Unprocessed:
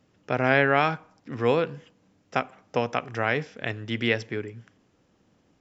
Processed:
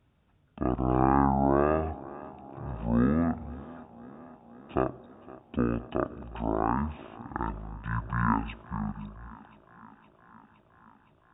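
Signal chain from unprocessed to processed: on a send: thinning echo 255 ms, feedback 75%, high-pass 230 Hz, level -19.5 dB; on the sum: wide varispeed 0.495×; trim -3 dB

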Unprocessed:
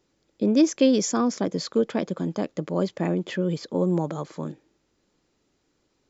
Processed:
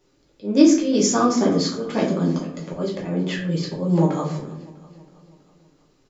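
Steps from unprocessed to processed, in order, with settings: slow attack 219 ms; feedback delay 324 ms, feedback 57%, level -20 dB; simulated room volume 56 m³, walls mixed, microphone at 1 m; trim +1.5 dB

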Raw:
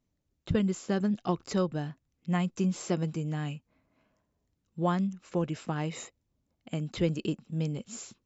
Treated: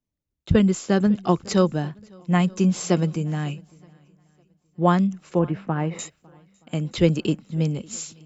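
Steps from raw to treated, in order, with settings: 5.39–5.99 s: low-pass 2.1 kHz 12 dB/octave; shuffle delay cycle 924 ms, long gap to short 1.5:1, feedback 35%, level -21.5 dB; three bands expanded up and down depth 40%; trim +8.5 dB

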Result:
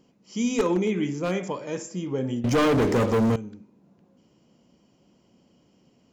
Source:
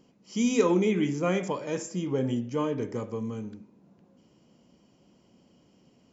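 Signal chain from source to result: one-sided wavefolder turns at -16 dBFS; 2.44–3.36 s: waveshaping leveller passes 5

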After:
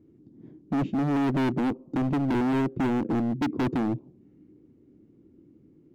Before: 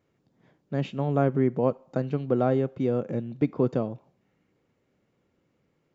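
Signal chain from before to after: FFT filter 180 Hz 0 dB, 320 Hz +10 dB, 550 Hz -14 dB, 1.6 kHz -20 dB; in parallel at +0.5 dB: compression 6:1, threshold -36 dBFS, peak gain reduction 22 dB; on the sum: hard clipper -29 dBFS, distortion -3 dB; trim +6 dB

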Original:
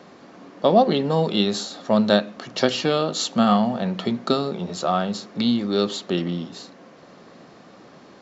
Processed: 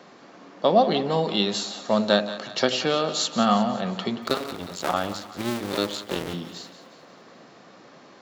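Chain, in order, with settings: 4.22–6.34 s: cycle switcher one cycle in 2, muted; high-pass 73 Hz; bass shelf 430 Hz -6 dB; two-band feedback delay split 750 Hz, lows 96 ms, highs 179 ms, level -12.5 dB

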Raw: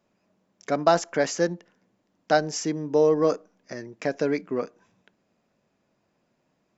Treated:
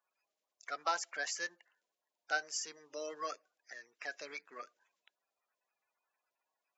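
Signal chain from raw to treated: coarse spectral quantiser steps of 30 dB; high-pass 1.3 kHz 12 dB/octave; trim -6.5 dB

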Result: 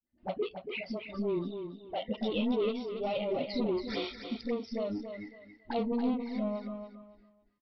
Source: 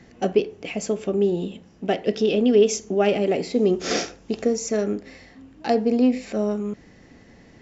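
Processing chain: gate with hold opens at -37 dBFS; spectral noise reduction 19 dB; in parallel at +1 dB: compression, threshold -30 dBFS, peak gain reduction 17 dB; on the sum: saturation -21.5 dBFS, distortion -7 dB; phase dispersion highs, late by 68 ms, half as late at 420 Hz; touch-sensitive flanger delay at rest 3.4 ms, full sweep at -24.5 dBFS; on a send: feedback delay 279 ms, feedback 25%, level -8 dB; on the sum: resampled via 11.025 kHz; trim -5.5 dB

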